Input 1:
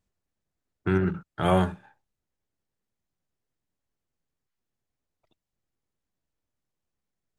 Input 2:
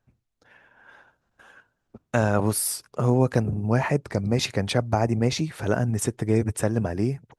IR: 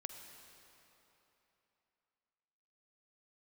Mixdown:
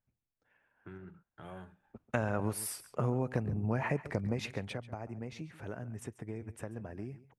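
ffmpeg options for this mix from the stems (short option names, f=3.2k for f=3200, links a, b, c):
-filter_complex "[0:a]acompressor=threshold=-41dB:ratio=2,equalizer=f=5.5k:w=1.2:g=-6.5,volume=-13.5dB[a];[1:a]highshelf=f=3.3k:t=q:w=1.5:g=-6,acompressor=threshold=-22dB:ratio=5,volume=-5.5dB,afade=t=in:st=1.45:d=0.25:silence=0.223872,afade=t=out:st=4.14:d=0.7:silence=0.334965,asplit=2[b][c];[c]volume=-17dB,aecho=0:1:138:1[d];[a][b][d]amix=inputs=3:normalize=0"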